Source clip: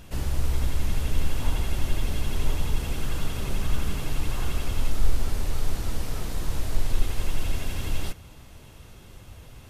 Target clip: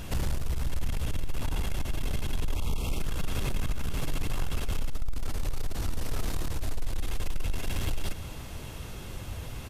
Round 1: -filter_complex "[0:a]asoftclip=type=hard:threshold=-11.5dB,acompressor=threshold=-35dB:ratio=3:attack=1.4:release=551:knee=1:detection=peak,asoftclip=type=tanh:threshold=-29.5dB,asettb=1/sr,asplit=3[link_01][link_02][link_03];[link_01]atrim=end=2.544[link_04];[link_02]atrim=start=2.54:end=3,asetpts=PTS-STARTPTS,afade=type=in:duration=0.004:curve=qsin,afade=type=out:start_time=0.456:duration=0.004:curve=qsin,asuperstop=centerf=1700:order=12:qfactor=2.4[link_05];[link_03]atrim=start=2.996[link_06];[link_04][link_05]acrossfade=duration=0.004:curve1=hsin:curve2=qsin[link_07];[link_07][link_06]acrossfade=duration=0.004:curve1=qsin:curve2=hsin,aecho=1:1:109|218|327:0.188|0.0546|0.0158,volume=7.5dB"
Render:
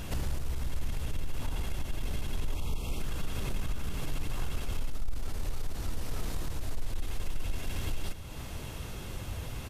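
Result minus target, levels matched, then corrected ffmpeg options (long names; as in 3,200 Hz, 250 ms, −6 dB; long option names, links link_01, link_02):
downward compressor: peak gain reduction +6 dB
-filter_complex "[0:a]asoftclip=type=hard:threshold=-11.5dB,acompressor=threshold=-26dB:ratio=3:attack=1.4:release=551:knee=1:detection=peak,asoftclip=type=tanh:threshold=-29.5dB,asettb=1/sr,asplit=3[link_01][link_02][link_03];[link_01]atrim=end=2.544[link_04];[link_02]atrim=start=2.54:end=3,asetpts=PTS-STARTPTS,afade=type=in:duration=0.004:curve=qsin,afade=type=out:start_time=0.456:duration=0.004:curve=qsin,asuperstop=centerf=1700:order=12:qfactor=2.4[link_05];[link_03]atrim=start=2.996[link_06];[link_04][link_05]acrossfade=duration=0.004:curve1=hsin:curve2=qsin[link_07];[link_07][link_06]acrossfade=duration=0.004:curve1=qsin:curve2=hsin,aecho=1:1:109|218|327:0.188|0.0546|0.0158,volume=7.5dB"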